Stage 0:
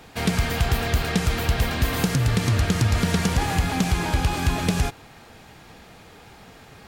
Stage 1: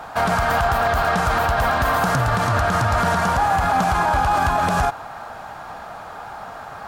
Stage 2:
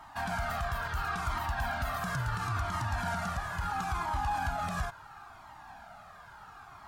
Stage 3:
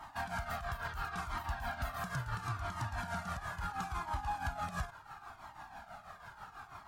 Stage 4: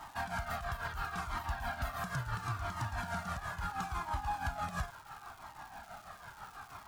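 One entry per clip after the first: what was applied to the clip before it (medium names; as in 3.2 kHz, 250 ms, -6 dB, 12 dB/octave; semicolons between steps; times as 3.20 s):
high-order bell 960 Hz +15.5 dB; peak limiter -12.5 dBFS, peak gain reduction 8.5 dB; trim +2 dB
peaking EQ 500 Hz -14.5 dB 0.62 oct; Shepard-style flanger falling 0.73 Hz; trim -9 dB
compression 1.5:1, threshold -45 dBFS, peak gain reduction 6.5 dB; tremolo triangle 6.1 Hz, depth 75%; trim +3 dB
crackle 550 per s -48 dBFS; trim +1 dB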